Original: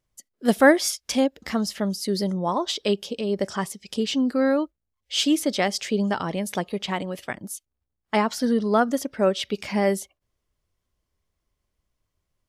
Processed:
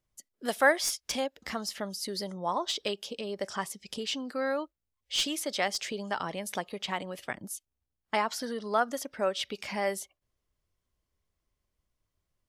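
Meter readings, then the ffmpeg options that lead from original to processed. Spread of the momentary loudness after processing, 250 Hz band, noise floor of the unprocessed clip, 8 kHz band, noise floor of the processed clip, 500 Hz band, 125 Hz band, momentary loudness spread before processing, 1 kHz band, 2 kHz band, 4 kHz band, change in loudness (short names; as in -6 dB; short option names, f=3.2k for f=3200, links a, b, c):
9 LU, -15.0 dB, -81 dBFS, -4.5 dB, -85 dBFS, -8.5 dB, -14.0 dB, 10 LU, -5.0 dB, -4.0 dB, -4.5 dB, -8.0 dB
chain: -filter_complex "[0:a]acrossover=split=540|2700[a][b][c];[a]acompressor=threshold=-35dB:ratio=6[d];[c]aeval=exprs='clip(val(0),-1,0.075)':c=same[e];[d][b][e]amix=inputs=3:normalize=0,volume=-4dB"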